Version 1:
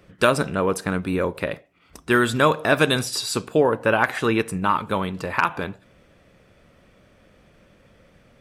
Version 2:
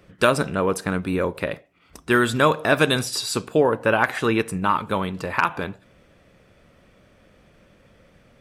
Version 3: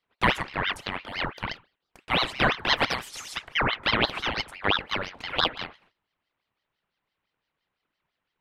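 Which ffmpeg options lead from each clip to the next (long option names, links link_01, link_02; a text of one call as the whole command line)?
ffmpeg -i in.wav -af anull out.wav
ffmpeg -i in.wav -filter_complex "[0:a]acrossover=split=460 3100:gain=0.158 1 0.224[link_01][link_02][link_03];[link_01][link_02][link_03]amix=inputs=3:normalize=0,agate=range=-19dB:threshold=-55dB:ratio=16:detection=peak,aeval=exprs='val(0)*sin(2*PI*1500*n/s+1500*0.75/5.9*sin(2*PI*5.9*n/s))':channel_layout=same" out.wav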